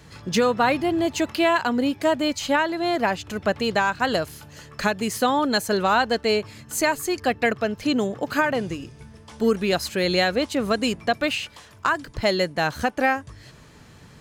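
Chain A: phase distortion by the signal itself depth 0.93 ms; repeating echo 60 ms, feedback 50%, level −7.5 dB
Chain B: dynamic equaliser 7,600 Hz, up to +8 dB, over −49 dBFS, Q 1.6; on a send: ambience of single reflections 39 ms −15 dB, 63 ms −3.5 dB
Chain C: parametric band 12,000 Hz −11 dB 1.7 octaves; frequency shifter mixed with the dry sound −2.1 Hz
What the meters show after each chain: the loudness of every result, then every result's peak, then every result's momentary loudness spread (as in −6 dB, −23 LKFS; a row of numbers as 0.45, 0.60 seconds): −22.0, −21.0, −26.5 LKFS; −7.0, −5.0, −10.5 dBFS; 7, 7, 7 LU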